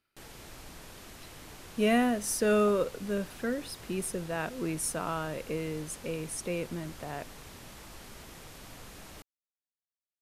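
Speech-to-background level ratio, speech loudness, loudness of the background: 16.5 dB, -31.5 LUFS, -48.0 LUFS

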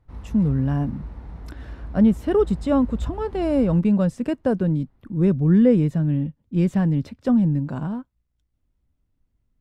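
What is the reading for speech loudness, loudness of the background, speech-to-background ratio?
-21.5 LUFS, -37.5 LUFS, 16.0 dB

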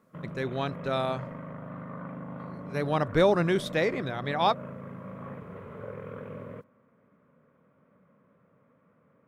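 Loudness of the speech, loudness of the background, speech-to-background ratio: -28.0 LUFS, -41.0 LUFS, 13.0 dB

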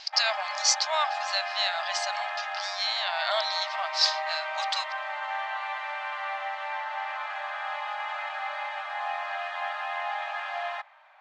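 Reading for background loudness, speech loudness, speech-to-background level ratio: -32.5 LUFS, -28.0 LUFS, 4.5 dB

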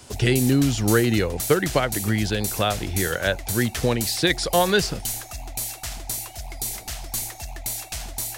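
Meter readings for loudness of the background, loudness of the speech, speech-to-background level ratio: -30.0 LUFS, -22.5 LUFS, 7.5 dB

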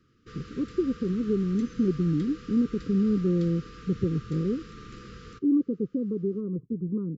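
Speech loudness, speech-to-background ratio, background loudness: -28.0 LUFS, 18.0 dB, -46.0 LUFS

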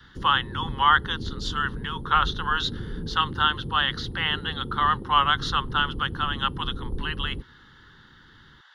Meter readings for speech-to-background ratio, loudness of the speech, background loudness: 11.0 dB, -25.0 LUFS, -36.0 LUFS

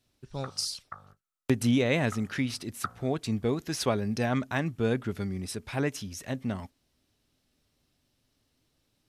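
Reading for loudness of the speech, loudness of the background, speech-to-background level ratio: -30.5 LUFS, -44.0 LUFS, 13.5 dB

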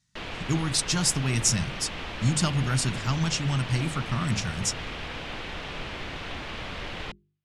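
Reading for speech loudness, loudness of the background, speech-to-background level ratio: -26.5 LUFS, -35.5 LUFS, 9.0 dB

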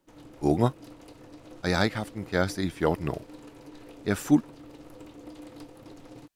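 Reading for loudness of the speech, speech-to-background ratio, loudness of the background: -28.0 LUFS, 19.5 dB, -47.5 LUFS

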